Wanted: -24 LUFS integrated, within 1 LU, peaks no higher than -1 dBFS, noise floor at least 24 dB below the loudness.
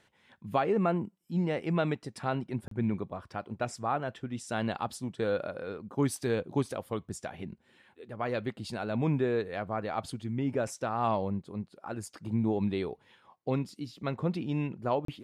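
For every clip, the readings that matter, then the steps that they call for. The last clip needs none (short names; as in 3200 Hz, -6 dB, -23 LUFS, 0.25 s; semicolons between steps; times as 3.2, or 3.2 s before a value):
dropouts 2; longest dropout 33 ms; loudness -33.0 LUFS; peak -14.5 dBFS; loudness target -24.0 LUFS
-> interpolate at 2.68/15.05, 33 ms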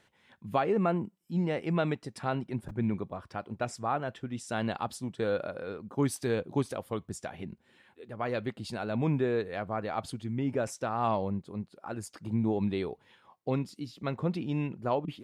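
dropouts 0; loudness -33.0 LUFS; peak -14.5 dBFS; loudness target -24.0 LUFS
-> gain +9 dB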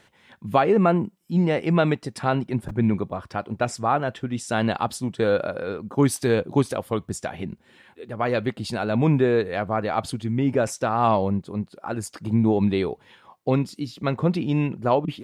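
loudness -24.0 LUFS; peak -5.5 dBFS; noise floor -59 dBFS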